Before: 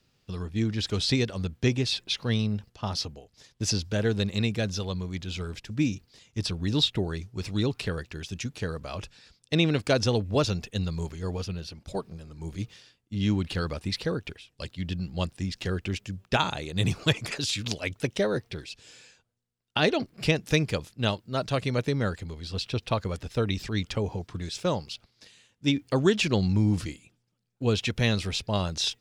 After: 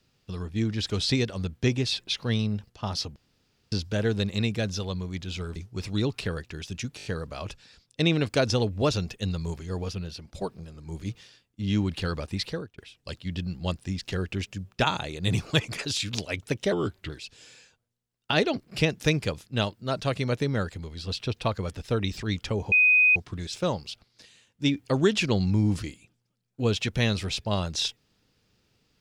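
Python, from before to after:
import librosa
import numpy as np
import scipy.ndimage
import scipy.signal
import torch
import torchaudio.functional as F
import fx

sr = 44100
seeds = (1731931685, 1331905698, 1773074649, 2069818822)

y = fx.edit(x, sr, fx.room_tone_fill(start_s=3.16, length_s=0.56),
    fx.cut(start_s=5.56, length_s=1.61),
    fx.stutter(start_s=8.58, slice_s=0.02, count=5),
    fx.fade_out_span(start_s=13.96, length_s=0.35),
    fx.speed_span(start_s=18.25, length_s=0.31, speed=0.82),
    fx.insert_tone(at_s=24.18, length_s=0.44, hz=2500.0, db=-15.5), tone=tone)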